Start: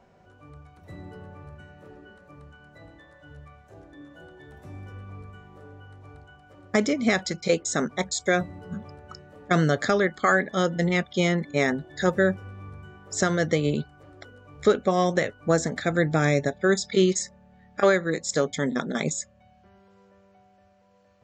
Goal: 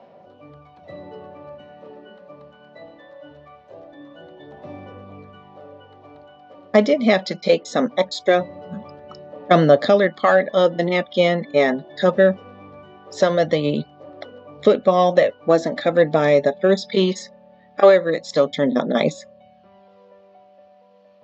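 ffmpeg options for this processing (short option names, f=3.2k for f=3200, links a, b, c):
-filter_complex "[0:a]asplit=2[a][b];[b]acontrast=85,volume=1dB[c];[a][c]amix=inputs=2:normalize=0,aphaser=in_gain=1:out_gain=1:delay=4.9:decay=0.33:speed=0.21:type=sinusoidal,highpass=230,equalizer=f=390:t=q:w=4:g=-5,equalizer=f=580:t=q:w=4:g=7,equalizer=f=1.5k:t=q:w=4:g=-10,equalizer=f=2.2k:t=q:w=4:g=-4,lowpass=f=4.4k:w=0.5412,lowpass=f=4.4k:w=1.3066,volume=-4dB"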